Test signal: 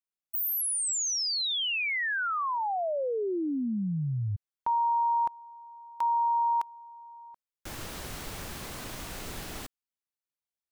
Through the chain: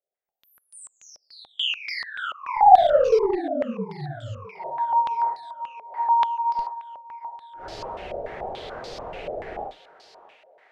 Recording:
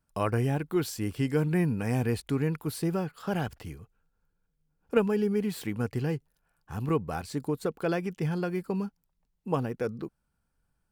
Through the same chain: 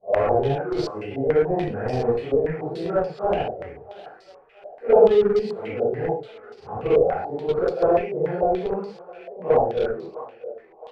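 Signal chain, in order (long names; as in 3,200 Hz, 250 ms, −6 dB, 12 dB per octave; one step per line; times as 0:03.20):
random phases in long frames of 200 ms
flat-topped bell 550 Hz +14 dB 1.3 octaves
in parallel at −11 dB: comparator with hysteresis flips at −15.5 dBFS
on the sum: feedback echo with a high-pass in the loop 662 ms, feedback 71%, high-pass 790 Hz, level −13 dB
low-pass on a step sequencer 6.9 Hz 600–4,700 Hz
level −3.5 dB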